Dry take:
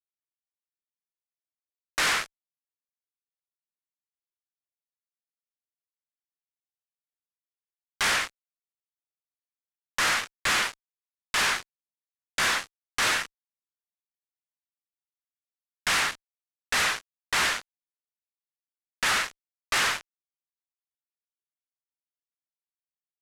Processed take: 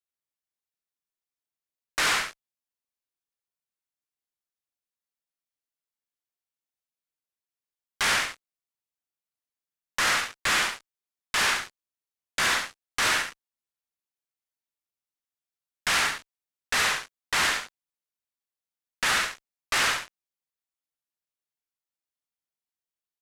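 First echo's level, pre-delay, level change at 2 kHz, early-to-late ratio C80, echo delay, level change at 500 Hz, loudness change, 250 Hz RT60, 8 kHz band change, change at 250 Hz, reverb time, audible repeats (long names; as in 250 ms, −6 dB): −7.0 dB, no reverb audible, +1.0 dB, no reverb audible, 70 ms, +0.5 dB, +0.5 dB, no reverb audible, +1.0 dB, +1.0 dB, no reverb audible, 1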